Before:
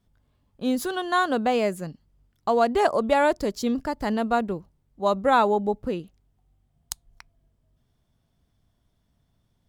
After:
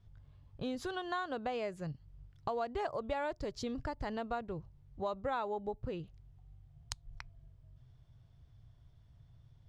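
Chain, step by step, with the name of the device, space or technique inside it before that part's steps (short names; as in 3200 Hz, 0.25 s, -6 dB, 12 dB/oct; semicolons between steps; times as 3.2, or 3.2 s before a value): jukebox (LPF 5400 Hz 12 dB/oct; resonant low shelf 160 Hz +7.5 dB, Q 3; compressor 3:1, threshold -39 dBFS, peak gain reduction 17.5 dB)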